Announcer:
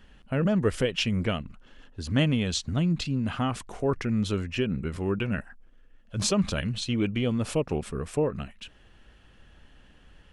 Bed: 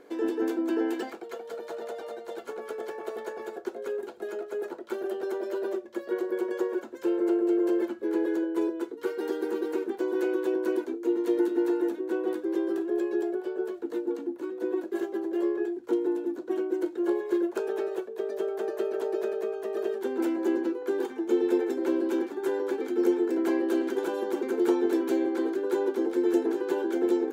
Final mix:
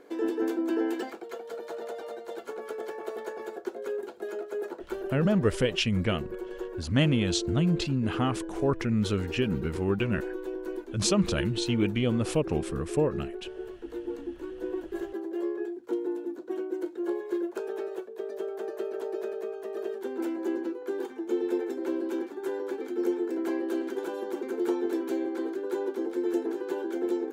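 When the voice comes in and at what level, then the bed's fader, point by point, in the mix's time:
4.80 s, 0.0 dB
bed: 4.81 s -0.5 dB
5.55 s -8 dB
13.62 s -8 dB
14.2 s -4 dB

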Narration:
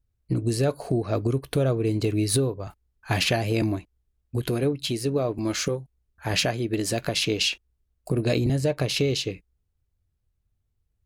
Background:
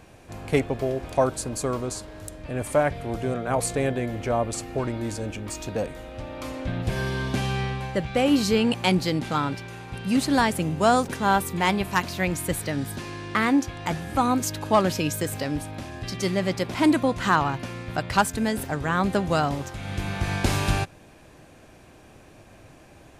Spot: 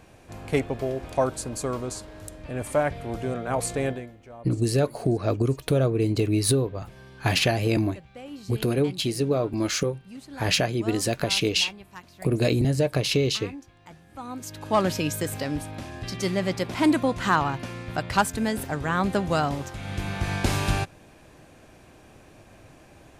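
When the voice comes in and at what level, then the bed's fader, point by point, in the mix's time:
4.15 s, +1.0 dB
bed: 3.9 s -2 dB
4.17 s -20 dB
14.07 s -20 dB
14.82 s -1 dB

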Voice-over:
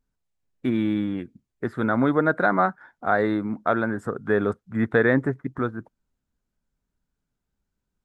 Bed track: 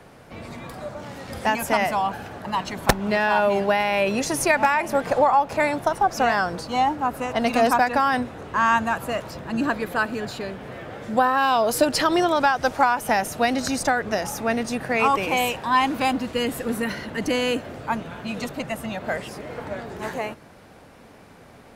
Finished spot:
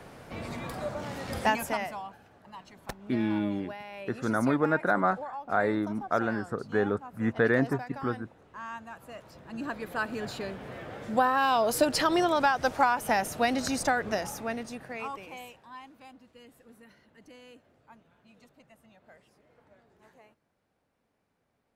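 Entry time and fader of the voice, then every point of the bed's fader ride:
2.45 s, -5.0 dB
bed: 1.38 s -0.5 dB
2.19 s -21 dB
8.86 s -21 dB
10.28 s -5 dB
14.11 s -5 dB
15.94 s -29 dB

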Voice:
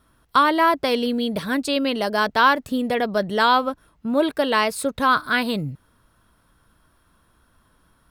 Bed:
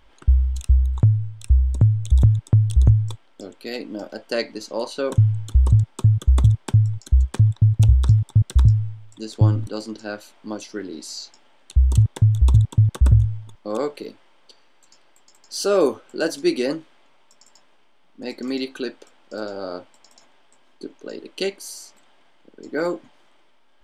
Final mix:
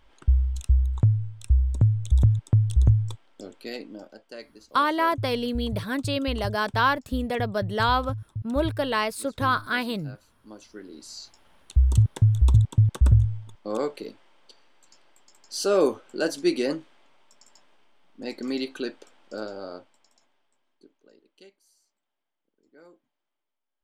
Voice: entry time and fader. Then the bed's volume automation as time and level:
4.40 s, -5.5 dB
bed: 3.67 s -4 dB
4.37 s -17.5 dB
10.27 s -17.5 dB
11.52 s -3 dB
19.31 s -3 dB
21.61 s -29 dB

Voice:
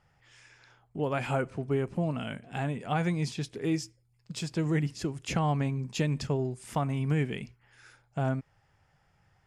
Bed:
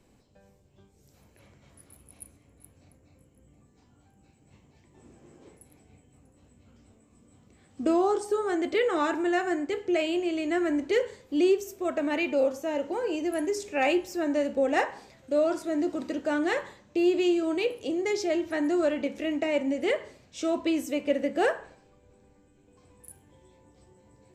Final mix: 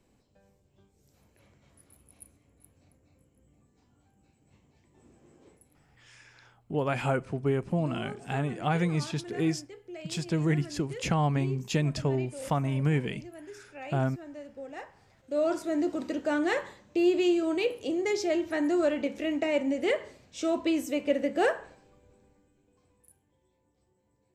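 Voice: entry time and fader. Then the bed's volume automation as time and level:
5.75 s, +1.5 dB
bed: 5.52 s -5 dB
6.27 s -17 dB
14.94 s -17 dB
15.49 s -0.5 dB
22 s -0.5 dB
23.31 s -14.5 dB

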